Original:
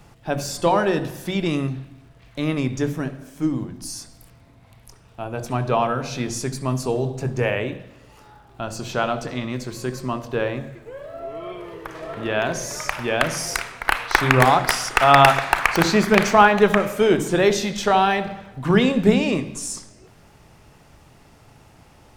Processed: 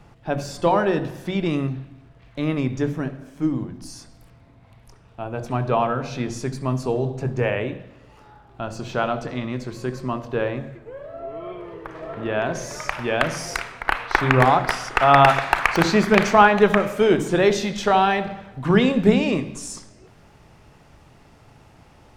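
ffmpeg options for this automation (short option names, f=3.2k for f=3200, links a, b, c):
-af "asetnsamples=n=441:p=0,asendcmd='10.77 lowpass f 1700;12.55 lowpass f 3700;13.82 lowpass f 2200;15.29 lowpass f 5000',lowpass=f=2.8k:p=1"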